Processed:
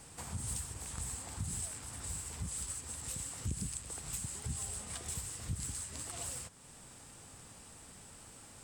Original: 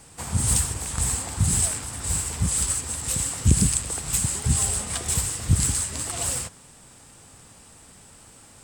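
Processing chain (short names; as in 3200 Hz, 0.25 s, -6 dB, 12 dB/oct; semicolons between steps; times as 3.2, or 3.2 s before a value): compressor 2:1, threshold -43 dBFS, peak gain reduction 17 dB; gain -4.5 dB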